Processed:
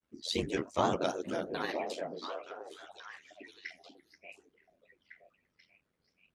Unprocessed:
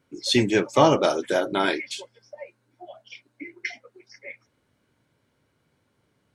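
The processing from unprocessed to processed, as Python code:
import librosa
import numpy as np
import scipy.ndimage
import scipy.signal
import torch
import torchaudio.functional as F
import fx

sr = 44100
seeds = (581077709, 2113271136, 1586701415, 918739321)

y = x * np.sin(2.0 * np.pi * 43.0 * np.arange(len(x)) / sr)
y = fx.granulator(y, sr, seeds[0], grain_ms=100.0, per_s=20.0, spray_ms=12.0, spread_st=3)
y = fx.echo_stepped(y, sr, ms=485, hz=210.0, octaves=1.4, feedback_pct=70, wet_db=-2.0)
y = F.gain(torch.from_numpy(y), -8.5).numpy()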